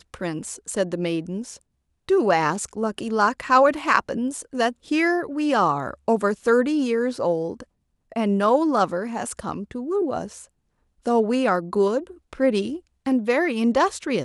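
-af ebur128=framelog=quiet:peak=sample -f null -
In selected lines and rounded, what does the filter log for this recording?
Integrated loudness:
  I:         -22.7 LUFS
  Threshold: -33.1 LUFS
Loudness range:
  LRA:         3.5 LU
  Threshold: -43.0 LUFS
  LRA low:   -25.0 LUFS
  LRA high:  -21.5 LUFS
Sample peak:
  Peak:       -2.5 dBFS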